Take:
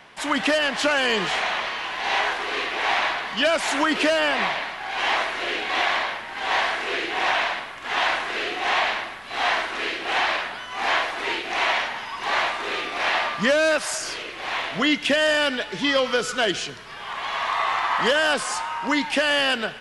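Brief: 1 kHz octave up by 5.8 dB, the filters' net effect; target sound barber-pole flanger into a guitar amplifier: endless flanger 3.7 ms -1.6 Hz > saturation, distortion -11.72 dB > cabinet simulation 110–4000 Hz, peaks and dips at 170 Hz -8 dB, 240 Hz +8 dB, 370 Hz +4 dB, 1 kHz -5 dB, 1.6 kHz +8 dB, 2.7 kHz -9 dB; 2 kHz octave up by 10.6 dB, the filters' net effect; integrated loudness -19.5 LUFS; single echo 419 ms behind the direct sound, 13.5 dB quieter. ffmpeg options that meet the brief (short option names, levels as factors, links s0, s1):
-filter_complex "[0:a]equalizer=f=1000:t=o:g=7.5,equalizer=f=2000:t=o:g=6,aecho=1:1:419:0.211,asplit=2[s0][s1];[s1]adelay=3.7,afreqshift=-1.6[s2];[s0][s2]amix=inputs=2:normalize=1,asoftclip=threshold=0.133,highpass=110,equalizer=f=170:t=q:w=4:g=-8,equalizer=f=240:t=q:w=4:g=8,equalizer=f=370:t=q:w=4:g=4,equalizer=f=1000:t=q:w=4:g=-5,equalizer=f=1600:t=q:w=4:g=8,equalizer=f=2700:t=q:w=4:g=-9,lowpass=f=4000:w=0.5412,lowpass=f=4000:w=1.3066,volume=1.26"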